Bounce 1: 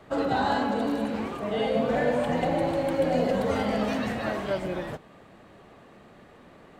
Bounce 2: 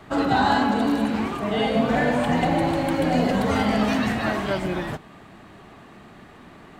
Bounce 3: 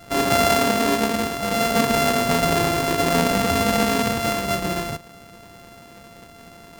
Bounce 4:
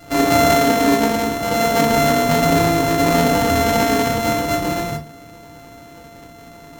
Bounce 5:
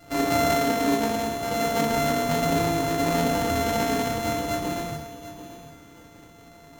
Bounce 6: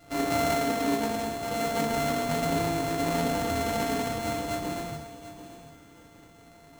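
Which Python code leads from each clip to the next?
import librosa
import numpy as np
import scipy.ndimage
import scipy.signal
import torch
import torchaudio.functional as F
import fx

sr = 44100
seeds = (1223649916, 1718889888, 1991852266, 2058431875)

y1 = fx.peak_eq(x, sr, hz=520.0, db=-9.5, octaves=0.46)
y1 = y1 * librosa.db_to_amplitude(7.0)
y2 = np.r_[np.sort(y1[:len(y1) // 64 * 64].reshape(-1, 64), axis=1).ravel(), y1[len(y1) // 64 * 64:]]
y2 = y2 * librosa.db_to_amplitude(1.5)
y3 = fx.rev_fdn(y2, sr, rt60_s=0.31, lf_ratio=1.45, hf_ratio=0.75, size_ms=20.0, drr_db=2.0)
y3 = y3 * librosa.db_to_amplitude(1.0)
y4 = fx.echo_feedback(y3, sr, ms=739, feedback_pct=25, wet_db=-13.5)
y4 = y4 * librosa.db_to_amplitude(-8.0)
y5 = np.repeat(y4[::3], 3)[:len(y4)]
y5 = y5 * librosa.db_to_amplitude(-4.0)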